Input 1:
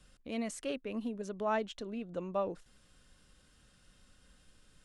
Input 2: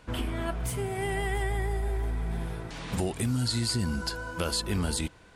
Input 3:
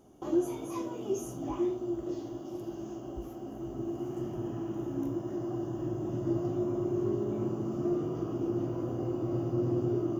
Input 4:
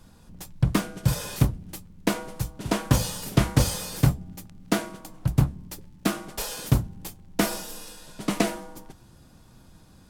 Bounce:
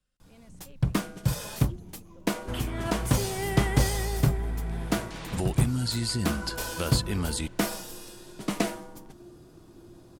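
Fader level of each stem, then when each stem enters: -18.5 dB, -0.5 dB, -19.5 dB, -3.5 dB; 0.00 s, 2.40 s, 1.35 s, 0.20 s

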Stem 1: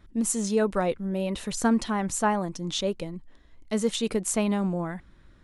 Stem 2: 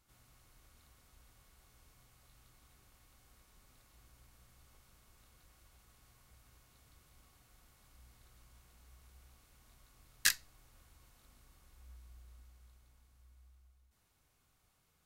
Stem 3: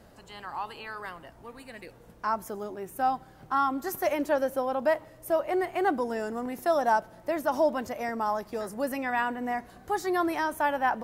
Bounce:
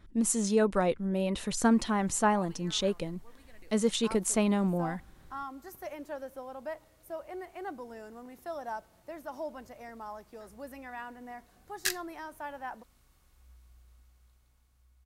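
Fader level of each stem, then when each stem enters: -1.5 dB, -1.5 dB, -14.0 dB; 0.00 s, 1.60 s, 1.80 s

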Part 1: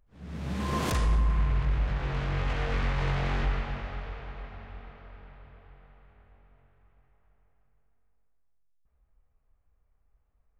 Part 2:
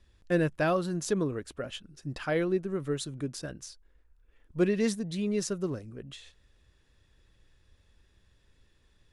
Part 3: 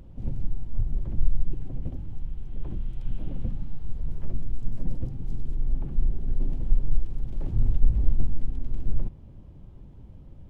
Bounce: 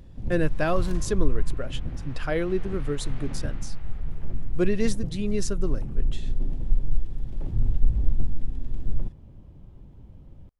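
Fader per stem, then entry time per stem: -14.5 dB, +1.5 dB, -0.5 dB; 0.00 s, 0.00 s, 0.00 s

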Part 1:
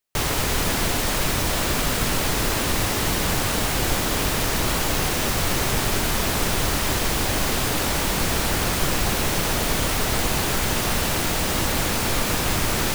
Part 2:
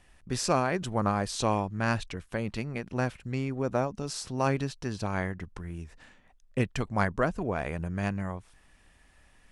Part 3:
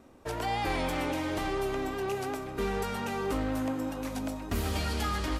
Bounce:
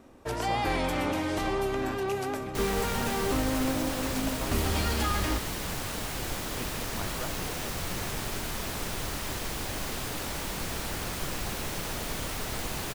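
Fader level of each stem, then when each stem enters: -11.5 dB, -13.0 dB, +2.0 dB; 2.40 s, 0.00 s, 0.00 s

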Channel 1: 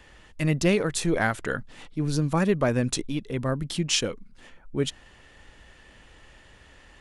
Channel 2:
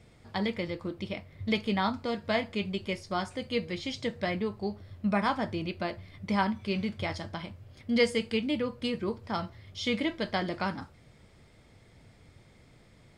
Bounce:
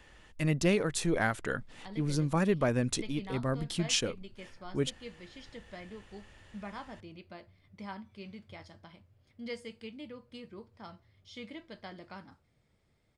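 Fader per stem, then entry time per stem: -5.0 dB, -15.5 dB; 0.00 s, 1.50 s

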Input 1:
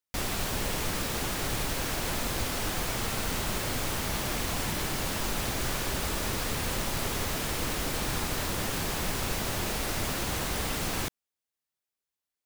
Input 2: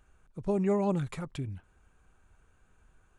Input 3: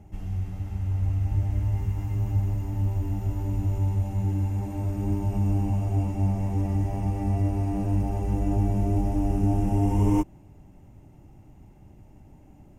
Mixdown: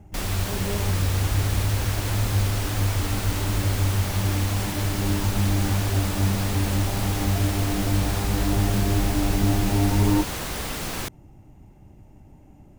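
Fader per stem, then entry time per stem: +1.0 dB, -6.5 dB, +1.5 dB; 0.00 s, 0.00 s, 0.00 s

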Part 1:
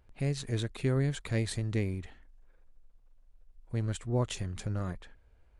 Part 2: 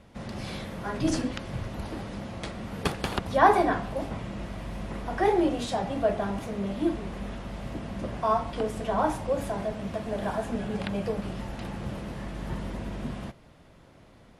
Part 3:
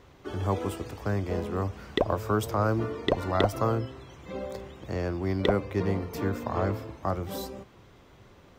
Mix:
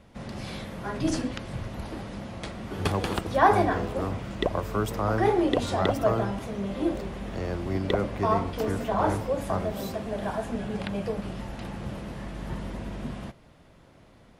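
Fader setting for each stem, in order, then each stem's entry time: -19.5 dB, -0.5 dB, -1.5 dB; 0.00 s, 0.00 s, 2.45 s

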